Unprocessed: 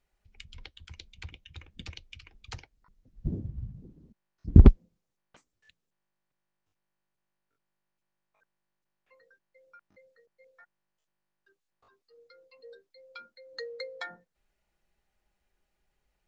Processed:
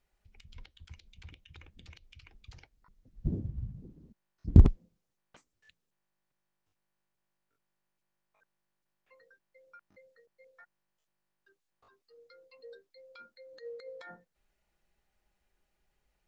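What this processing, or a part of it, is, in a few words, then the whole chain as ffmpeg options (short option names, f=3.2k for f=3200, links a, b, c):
de-esser from a sidechain: -filter_complex "[0:a]asplit=2[a][b];[b]highpass=4.1k,apad=whole_len=717581[c];[a][c]sidechaincompress=threshold=-59dB:ratio=8:attack=4.3:release=51"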